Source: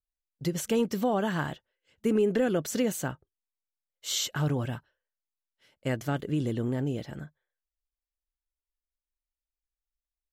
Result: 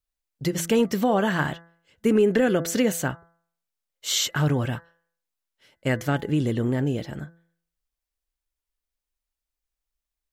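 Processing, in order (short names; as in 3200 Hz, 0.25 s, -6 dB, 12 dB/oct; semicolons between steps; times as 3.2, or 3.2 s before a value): dynamic EQ 1900 Hz, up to +4 dB, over -49 dBFS, Q 1.8; de-hum 168 Hz, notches 12; gain +5.5 dB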